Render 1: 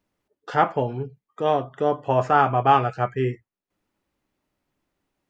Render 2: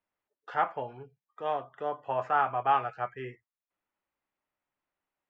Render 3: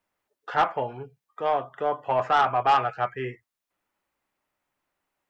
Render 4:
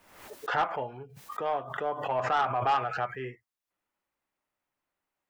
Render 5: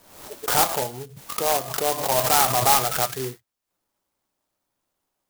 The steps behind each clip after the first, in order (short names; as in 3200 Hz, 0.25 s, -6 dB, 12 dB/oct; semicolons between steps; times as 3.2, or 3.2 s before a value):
three-band isolator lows -13 dB, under 590 Hz, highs -14 dB, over 3100 Hz; gain -6.5 dB
soft clip -21 dBFS, distortion -14 dB; gain +8 dB
backwards sustainer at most 67 dB/s; gain -6 dB
clock jitter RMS 0.14 ms; gain +8 dB